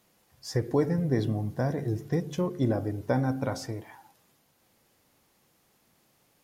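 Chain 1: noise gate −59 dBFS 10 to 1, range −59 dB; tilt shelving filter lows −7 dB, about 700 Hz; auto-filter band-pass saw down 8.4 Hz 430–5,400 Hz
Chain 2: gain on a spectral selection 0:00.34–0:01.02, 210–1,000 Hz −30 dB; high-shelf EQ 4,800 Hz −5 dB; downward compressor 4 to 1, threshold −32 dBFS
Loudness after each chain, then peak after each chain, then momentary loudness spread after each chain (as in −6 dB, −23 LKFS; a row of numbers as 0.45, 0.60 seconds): −43.0, −37.0 LKFS; −24.0, −21.0 dBFS; 8, 7 LU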